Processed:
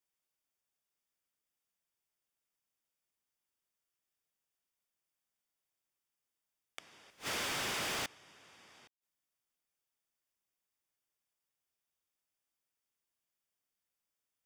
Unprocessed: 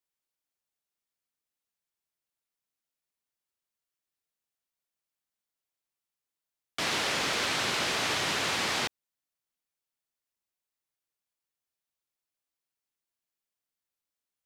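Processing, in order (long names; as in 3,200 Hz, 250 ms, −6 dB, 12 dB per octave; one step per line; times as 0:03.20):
Butterworth band-reject 4,100 Hz, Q 7.9
0:07.10–0:08.06: hard clipping −35.5 dBFS, distortion −7 dB
gate with flip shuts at −33 dBFS, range −31 dB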